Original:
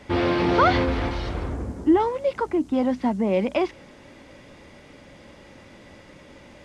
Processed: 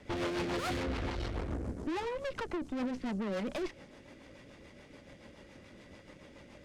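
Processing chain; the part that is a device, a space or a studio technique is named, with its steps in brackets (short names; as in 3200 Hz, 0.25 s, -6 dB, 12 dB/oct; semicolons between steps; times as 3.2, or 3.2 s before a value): overdriven rotary cabinet (tube stage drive 31 dB, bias 0.8; rotary speaker horn 7 Hz)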